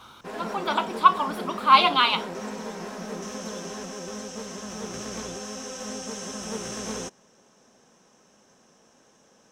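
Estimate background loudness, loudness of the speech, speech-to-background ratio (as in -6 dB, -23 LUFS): -35.0 LUFS, -21.5 LUFS, 13.5 dB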